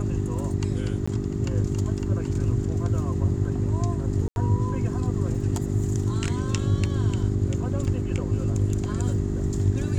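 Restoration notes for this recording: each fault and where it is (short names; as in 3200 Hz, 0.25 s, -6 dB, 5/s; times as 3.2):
hum 50 Hz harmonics 8 -29 dBFS
1.06–1.07 gap 15 ms
4.28–4.36 gap 81 ms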